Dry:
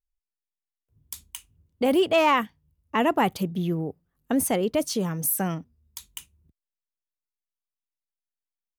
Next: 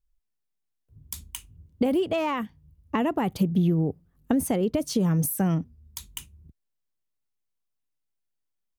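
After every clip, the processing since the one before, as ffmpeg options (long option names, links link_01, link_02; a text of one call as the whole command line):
ffmpeg -i in.wav -af "acompressor=threshold=-28dB:ratio=10,lowshelf=frequency=380:gain=11,volume=1.5dB" out.wav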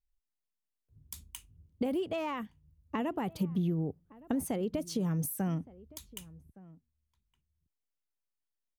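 ffmpeg -i in.wav -filter_complex "[0:a]asplit=2[link_01][link_02];[link_02]adelay=1166,volume=-21dB,highshelf=frequency=4000:gain=-26.2[link_03];[link_01][link_03]amix=inputs=2:normalize=0,volume=-8.5dB" out.wav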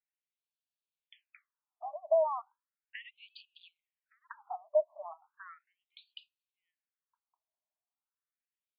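ffmpeg -i in.wav -af "highpass=frequency=570:width_type=q:width=4.9,afftfilt=real='re*between(b*sr/1024,810*pow(3500/810,0.5+0.5*sin(2*PI*0.36*pts/sr))/1.41,810*pow(3500/810,0.5+0.5*sin(2*PI*0.36*pts/sr))*1.41)':imag='im*between(b*sr/1024,810*pow(3500/810,0.5+0.5*sin(2*PI*0.36*pts/sr))/1.41,810*pow(3500/810,0.5+0.5*sin(2*PI*0.36*pts/sr))*1.41)':win_size=1024:overlap=0.75" out.wav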